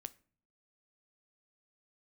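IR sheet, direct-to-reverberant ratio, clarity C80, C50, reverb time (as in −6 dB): 13.5 dB, 26.0 dB, 21.0 dB, non-exponential decay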